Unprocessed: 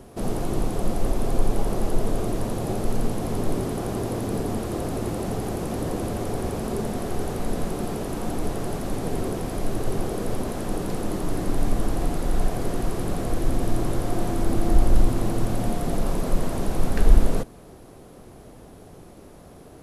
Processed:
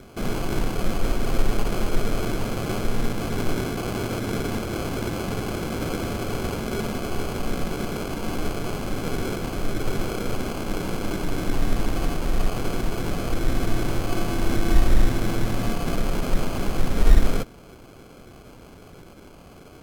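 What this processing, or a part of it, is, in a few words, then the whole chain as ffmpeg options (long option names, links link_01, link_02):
crushed at another speed: -af "asetrate=55125,aresample=44100,acrusher=samples=19:mix=1:aa=0.000001,asetrate=35280,aresample=44100"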